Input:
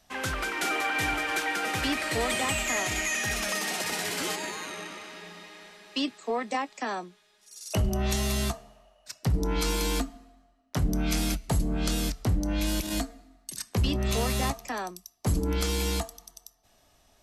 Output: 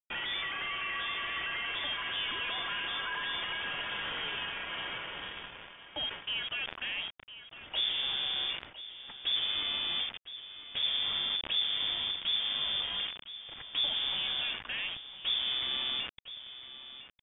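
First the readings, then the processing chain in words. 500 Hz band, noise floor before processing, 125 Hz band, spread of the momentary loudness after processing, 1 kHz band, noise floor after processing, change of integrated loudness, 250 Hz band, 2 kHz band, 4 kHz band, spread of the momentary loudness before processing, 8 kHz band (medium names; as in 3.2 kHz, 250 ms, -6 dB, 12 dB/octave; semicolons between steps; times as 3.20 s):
-16.0 dB, -64 dBFS, -25.5 dB, 14 LU, -9.0 dB, -52 dBFS, -3.0 dB, -22.0 dB, -4.0 dB, +6.0 dB, 13 LU, under -40 dB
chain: low-pass that closes with the level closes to 2.3 kHz, closed at -26.5 dBFS; peak limiter -31 dBFS, peak gain reduction 12 dB; bit crusher 7-bit; on a send: delay 1007 ms -14 dB; on the sum: frequency inversion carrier 3.5 kHz; decay stretcher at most 95 dB/s; trim +2.5 dB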